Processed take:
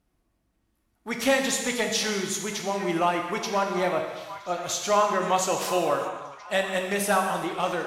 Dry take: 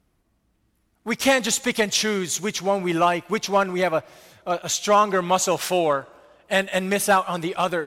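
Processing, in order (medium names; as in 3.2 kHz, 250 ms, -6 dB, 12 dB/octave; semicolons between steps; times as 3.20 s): on a send: repeats whose band climbs or falls 740 ms, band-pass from 1.1 kHz, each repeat 0.7 oct, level -12 dB; on the sum: gated-style reverb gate 430 ms falling, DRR 2 dB; trim -6 dB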